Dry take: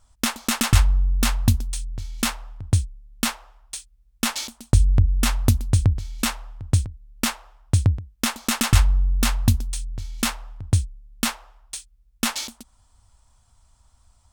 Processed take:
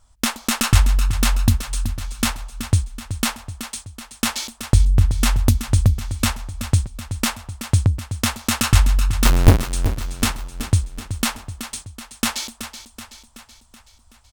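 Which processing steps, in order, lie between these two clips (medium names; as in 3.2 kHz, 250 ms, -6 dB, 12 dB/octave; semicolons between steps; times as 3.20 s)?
9.25–9.65 s: square wave that keeps the level; feedback delay 377 ms, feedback 55%, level -11 dB; trim +2 dB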